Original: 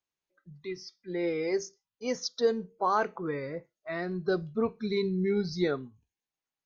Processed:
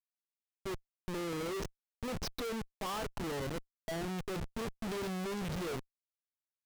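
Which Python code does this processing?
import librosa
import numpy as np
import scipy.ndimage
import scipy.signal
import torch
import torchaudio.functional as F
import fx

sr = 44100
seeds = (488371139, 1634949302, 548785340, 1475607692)

y = fx.rattle_buzz(x, sr, strikes_db=-33.0, level_db=-24.0)
y = fx.schmitt(y, sr, flips_db=-35.0)
y = fx.doppler_dist(y, sr, depth_ms=0.22)
y = y * librosa.db_to_amplitude(-5.0)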